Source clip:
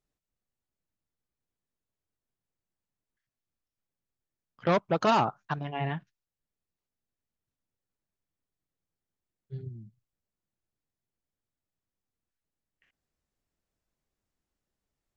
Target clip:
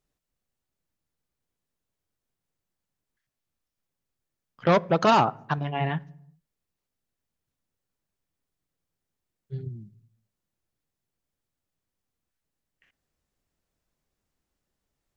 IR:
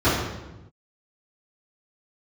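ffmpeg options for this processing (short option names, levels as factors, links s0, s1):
-filter_complex "[0:a]asplit=2[s0][s1];[1:a]atrim=start_sample=2205,asetrate=66150,aresample=44100[s2];[s1][s2]afir=irnorm=-1:irlink=0,volume=0.01[s3];[s0][s3]amix=inputs=2:normalize=0,volume=1.68"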